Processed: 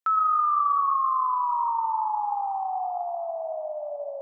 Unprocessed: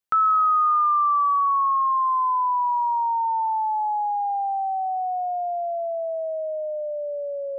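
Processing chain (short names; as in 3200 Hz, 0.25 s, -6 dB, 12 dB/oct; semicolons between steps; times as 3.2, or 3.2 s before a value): HPF 520 Hz 12 dB/oct; tempo 1.8×; on a send: reverb RT60 4.2 s, pre-delay 87 ms, DRR 7 dB; on the sum: gain -3.5 dB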